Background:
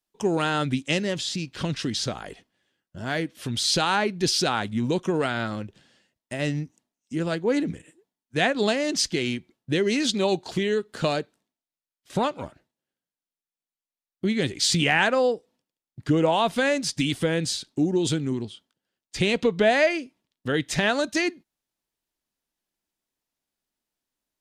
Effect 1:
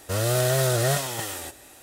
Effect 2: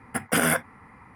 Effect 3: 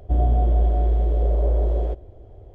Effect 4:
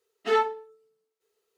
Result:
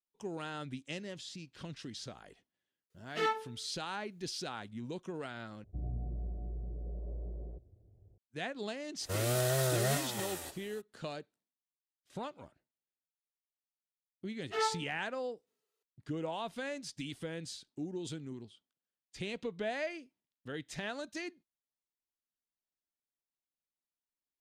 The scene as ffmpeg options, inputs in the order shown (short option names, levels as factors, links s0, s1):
-filter_complex "[4:a]asplit=2[s0][s1];[0:a]volume=0.141[s2];[s0]equalizer=f=500:t=o:w=2.6:g=-8.5[s3];[3:a]bandpass=f=140:t=q:w=1.7:csg=0[s4];[s1]highpass=490[s5];[s2]asplit=2[s6][s7];[s6]atrim=end=5.644[s8];[s4]atrim=end=2.54,asetpts=PTS-STARTPTS,volume=0.316[s9];[s7]atrim=start=8.176[s10];[s3]atrim=end=1.57,asetpts=PTS-STARTPTS,volume=0.708,afade=t=in:d=0.004:c=hsin,afade=t=out:st=1.566:d=0.004:c=hsin,adelay=2900[s11];[1:a]atrim=end=1.82,asetpts=PTS-STARTPTS,volume=0.376,afade=t=in:d=0.02,afade=t=out:st=1.8:d=0.02,adelay=9000[s12];[s5]atrim=end=1.57,asetpts=PTS-STARTPTS,volume=0.398,afade=t=in:d=0.004:c=hsin,afade=t=out:st=1.566:d=0.004:c=hsin,adelay=14260[s13];[s8][s9]acrossfade=d=0.004:c1=hsin:c2=hsin[s14];[s14][s10]acrossfade=d=0.004:c1=hsin:c2=hsin[s15];[s15][s11][s12][s13]amix=inputs=4:normalize=0"